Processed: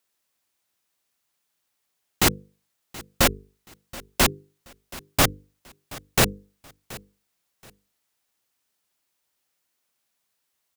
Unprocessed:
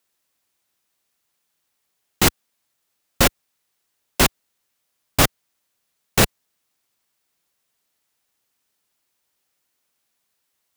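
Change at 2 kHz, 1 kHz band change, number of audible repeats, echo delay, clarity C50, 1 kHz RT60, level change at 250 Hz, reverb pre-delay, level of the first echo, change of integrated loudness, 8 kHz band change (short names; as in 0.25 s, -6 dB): -2.5 dB, -2.5 dB, 2, 0.727 s, none, none, -3.5 dB, none, -20.0 dB, -3.0 dB, -2.5 dB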